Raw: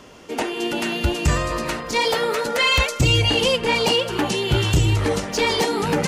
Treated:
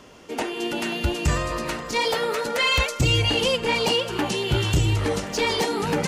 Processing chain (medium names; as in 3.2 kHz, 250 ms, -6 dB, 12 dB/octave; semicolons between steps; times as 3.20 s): thinning echo 535 ms, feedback 57%, level -20 dB; trim -3 dB